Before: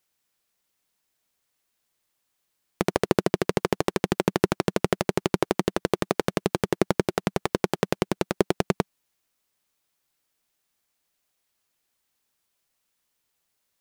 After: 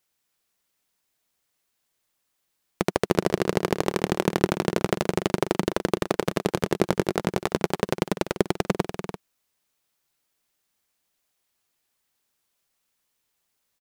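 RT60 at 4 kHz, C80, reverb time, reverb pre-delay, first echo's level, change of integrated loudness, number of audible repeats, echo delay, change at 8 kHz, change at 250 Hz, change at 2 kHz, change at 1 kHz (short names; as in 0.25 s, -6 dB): none, none, none, none, -10.5 dB, +0.5 dB, 2, 0.291 s, +0.5 dB, +0.5 dB, +0.5 dB, +0.5 dB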